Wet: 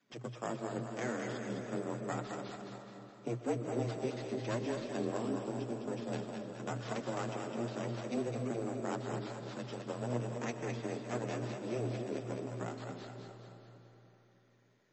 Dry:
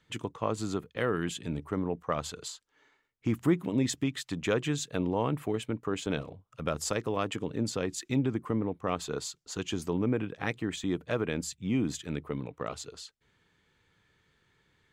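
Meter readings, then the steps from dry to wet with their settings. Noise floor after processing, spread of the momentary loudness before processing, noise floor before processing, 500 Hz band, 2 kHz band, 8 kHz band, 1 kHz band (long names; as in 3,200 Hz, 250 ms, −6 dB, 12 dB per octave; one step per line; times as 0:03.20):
−66 dBFS, 9 LU, −73 dBFS, −4.5 dB, −7.0 dB, −12.0 dB, −4.5 dB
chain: gain on a spectral selection 0:05.17–0:06.08, 430–2,000 Hz −9 dB
high-shelf EQ 2,200 Hz −7 dB
in parallel at −2 dB: downward compressor 6 to 1, threshold −45 dBFS, peak gain reduction 23 dB
on the sum: half-wave rectification
frequency shifter +120 Hz
sample-rate reduction 8,400 Hz, jitter 0%
flanger 0.86 Hz, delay 3.7 ms, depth 9.3 ms, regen −4%
on a send: echo with a time of its own for lows and highs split 530 Hz, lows 287 ms, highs 209 ms, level −5 dB
on the sum: comb and all-pass reverb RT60 3.7 s, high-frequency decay 0.8×, pre-delay 80 ms, DRR 8.5 dB
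level −3 dB
MP3 32 kbit/s 32,000 Hz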